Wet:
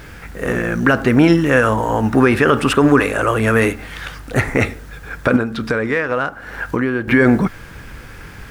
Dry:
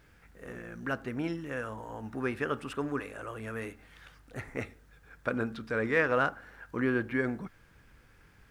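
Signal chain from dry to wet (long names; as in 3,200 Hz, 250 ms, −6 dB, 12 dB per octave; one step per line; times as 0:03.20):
0:05.36–0:07.08: downward compressor 6 to 1, threshold −41 dBFS, peak gain reduction 18.5 dB
boost into a limiter +25 dB
level −1 dB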